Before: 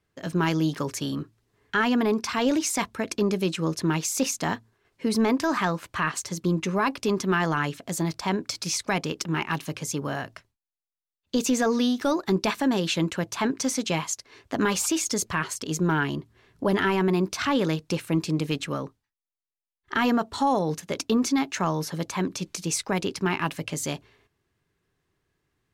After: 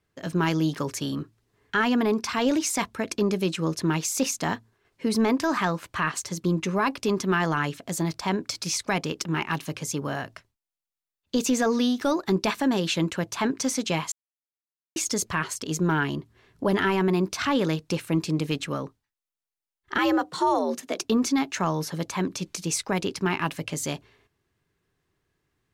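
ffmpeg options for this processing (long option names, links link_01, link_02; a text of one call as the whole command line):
ffmpeg -i in.wav -filter_complex "[0:a]asettb=1/sr,asplit=3[link_01][link_02][link_03];[link_01]atrim=end=19.984[link_04];[link_02]atrim=start=19.98:end=21.04,asetpts=PTS-STARTPTS,afade=type=in:duration=0.004:curve=qsin,afade=type=out:start_time=1.056:duration=0.004:curve=qsin,afreqshift=81[link_05];[link_03]atrim=start=21.036[link_06];[link_04][link_05]acrossfade=duration=0.004:curve1=hsin:curve2=qsin[link_07];[link_07][link_06]acrossfade=duration=0.004:curve1=qsin:curve2=hsin,asplit=3[link_08][link_09][link_10];[link_08]atrim=end=14.12,asetpts=PTS-STARTPTS,afade=type=out:start_time=14.116:duration=0.004:curve=hsin[link_11];[link_09]atrim=start=14.12:end=14.96,asetpts=PTS-STARTPTS,volume=0[link_12];[link_10]atrim=start=14.96,asetpts=PTS-STARTPTS,afade=type=in:duration=0.004:curve=hsin[link_13];[link_11][link_12][link_13]concat=n=3:v=0:a=1" out.wav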